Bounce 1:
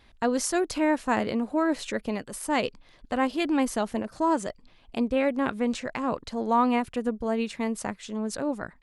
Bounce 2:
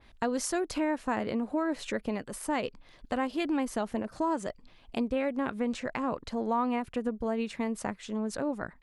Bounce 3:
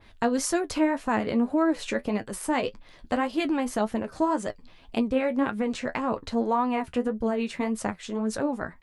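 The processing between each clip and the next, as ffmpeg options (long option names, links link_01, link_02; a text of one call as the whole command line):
ffmpeg -i in.wav -af "acompressor=threshold=-28dB:ratio=2.5,adynamicequalizer=threshold=0.00282:dfrequency=2900:dqfactor=0.7:tfrequency=2900:tqfactor=0.7:attack=5:release=100:ratio=0.375:range=2.5:mode=cutabove:tftype=highshelf" out.wav
ffmpeg -i in.wav -af "flanger=delay=9:depth=3.8:regen=45:speed=1.8:shape=sinusoidal,volume=8.5dB" out.wav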